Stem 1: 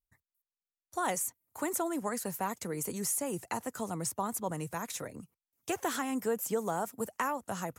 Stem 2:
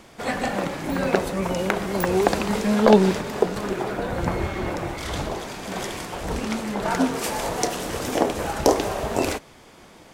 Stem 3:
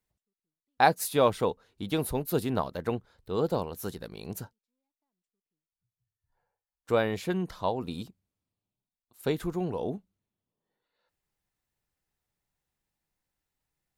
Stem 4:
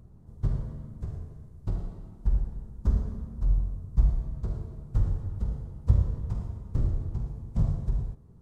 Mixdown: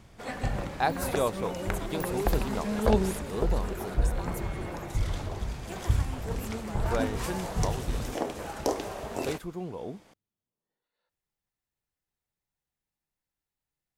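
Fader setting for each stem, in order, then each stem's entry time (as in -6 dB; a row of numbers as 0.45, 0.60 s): -10.0, -10.5, -5.5, -4.0 dB; 0.00, 0.00, 0.00, 0.00 s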